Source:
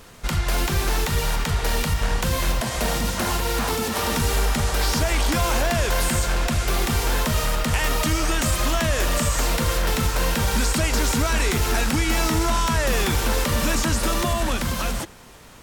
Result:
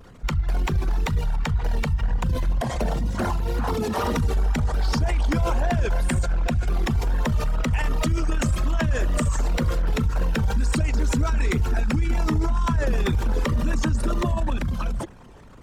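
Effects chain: resonances exaggerated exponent 2; vibrato 2 Hz 55 cents

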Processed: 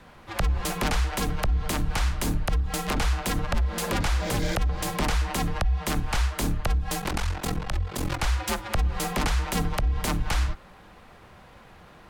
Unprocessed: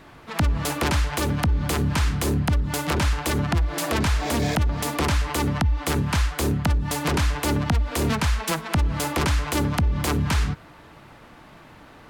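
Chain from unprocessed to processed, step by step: 7.00–8.19 s: ring modulator 22 Hz; frequency shift -120 Hz; trim -2.5 dB

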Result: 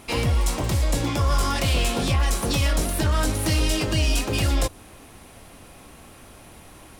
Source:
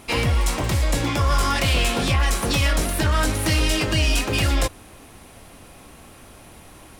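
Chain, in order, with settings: dynamic bell 1.9 kHz, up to -5 dB, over -36 dBFS, Q 0.84; trim -1 dB

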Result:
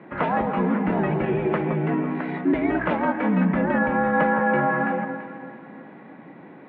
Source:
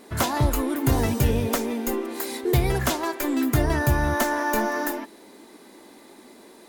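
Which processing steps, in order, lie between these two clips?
peak limiter -15 dBFS, peak gain reduction 4.5 dB; echo whose repeats swap between lows and highs 167 ms, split 1.3 kHz, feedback 62%, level -6.5 dB; mistuned SSB -78 Hz 240–2500 Hz; trim +4.5 dB

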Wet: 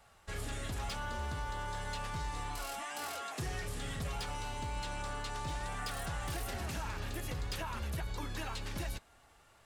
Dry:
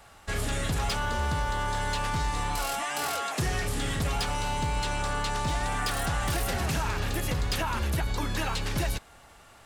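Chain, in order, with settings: flange 0.51 Hz, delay 1.4 ms, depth 2.3 ms, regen -69%; trim -6 dB

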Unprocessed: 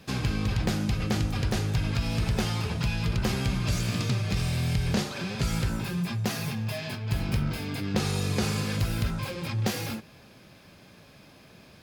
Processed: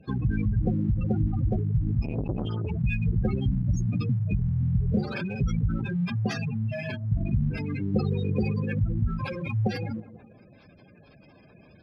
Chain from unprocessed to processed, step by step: tape echo 162 ms, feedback 57%, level -12.5 dB, low-pass 1.9 kHz; spectral gate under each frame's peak -15 dB strong; in parallel at -9 dB: crossover distortion -47 dBFS; on the sum: dynamic bell 2 kHz, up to +4 dB, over -50 dBFS, Q 0.92; 2.02–2.67 s: transformer saturation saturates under 360 Hz

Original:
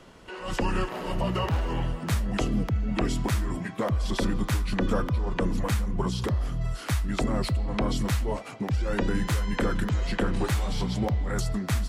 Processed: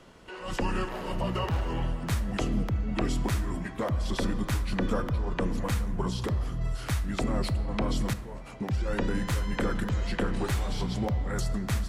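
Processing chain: 8.13–8.61 s: compression, threshold -36 dBFS, peak gain reduction 13 dB; on a send: reverberation RT60 2.7 s, pre-delay 18 ms, DRR 13 dB; on the sum: trim -2.5 dB

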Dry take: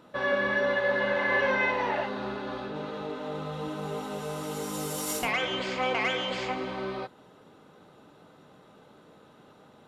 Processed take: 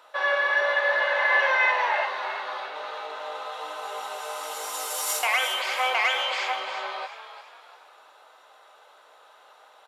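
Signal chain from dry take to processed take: high-pass 650 Hz 24 dB/octave; frequency-shifting echo 347 ms, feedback 40%, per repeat +59 Hz, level -11 dB; trim +5.5 dB

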